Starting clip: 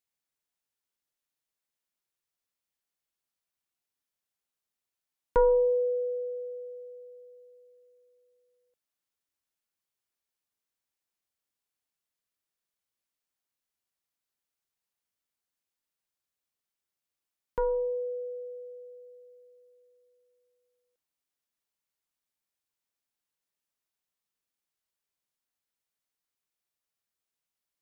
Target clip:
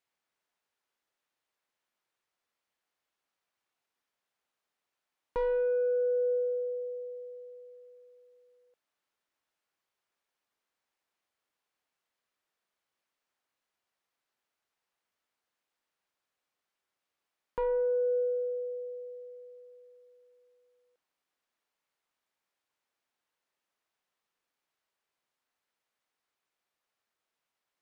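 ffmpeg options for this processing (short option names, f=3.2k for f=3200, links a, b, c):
-filter_complex "[0:a]asplit=2[a][b];[b]highpass=f=720:p=1,volume=15dB,asoftclip=type=tanh:threshold=-15.5dB[c];[a][c]amix=inputs=2:normalize=0,lowpass=f=1.3k:p=1,volume=-6dB,alimiter=level_in=3.5dB:limit=-24dB:level=0:latency=1,volume=-3.5dB,volume=2.5dB"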